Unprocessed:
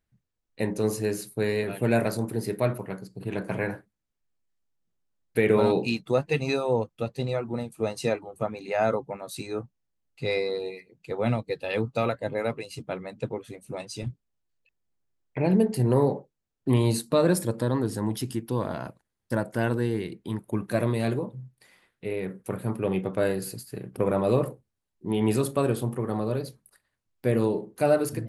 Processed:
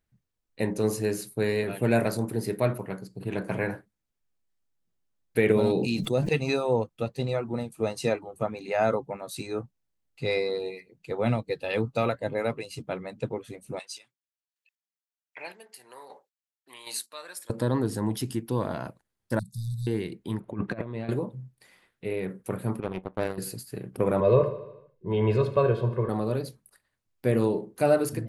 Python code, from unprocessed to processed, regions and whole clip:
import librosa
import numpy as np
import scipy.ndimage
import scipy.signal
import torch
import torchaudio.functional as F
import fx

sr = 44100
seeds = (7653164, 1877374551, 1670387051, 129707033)

y = fx.chain(x, sr, fx.peak_eq(hz=1300.0, db=-10.0, octaves=1.9),
    fx.sustainer(db_per_s=33.0), at=(5.52, 6.29))
y = fx.chain(y, sr, fx.highpass(hz=1400.0, slope=12),
    fx.chopper(hz=1.3, depth_pct=60, duty_pct=25), at=(13.79, 17.5))
y = fx.chain(y, sr, fx.clip_hard(threshold_db=-19.5),
    fx.brickwall_bandstop(low_hz=200.0, high_hz=3500.0), at=(19.39, 19.87))
y = fx.chain(y, sr, fx.lowpass(hz=2800.0, slope=12),
    fx.over_compress(threshold_db=-31.0, ratio=-0.5), at=(20.4, 21.09))
y = fx.chain(y, sr, fx.high_shelf(hz=2700.0, db=-7.0),
    fx.power_curve(exponent=2.0), at=(22.8, 23.38))
y = fx.chain(y, sr, fx.air_absorb(metres=250.0),
    fx.comb(ms=1.9, depth=0.84),
    fx.echo_feedback(ms=75, feedback_pct=60, wet_db=-14.0), at=(24.2, 26.09))